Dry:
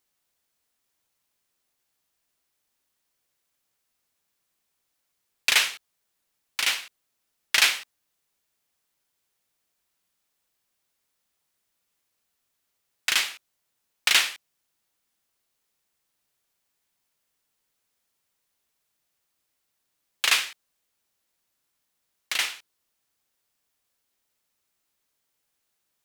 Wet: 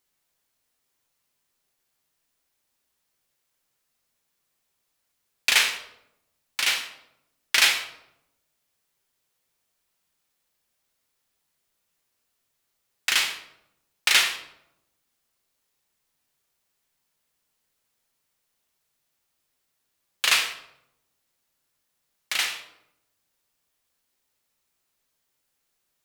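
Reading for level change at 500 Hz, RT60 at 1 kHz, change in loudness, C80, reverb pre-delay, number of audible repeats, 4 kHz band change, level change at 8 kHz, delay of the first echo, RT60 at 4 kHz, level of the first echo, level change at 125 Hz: +2.0 dB, 0.75 s, +1.0 dB, 11.5 dB, 8 ms, no echo, +1.0 dB, +1.0 dB, no echo, 0.55 s, no echo, no reading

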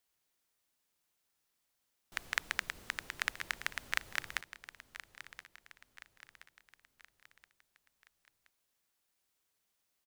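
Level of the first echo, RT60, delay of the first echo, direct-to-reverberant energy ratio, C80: -14.0 dB, no reverb, 1024 ms, no reverb, no reverb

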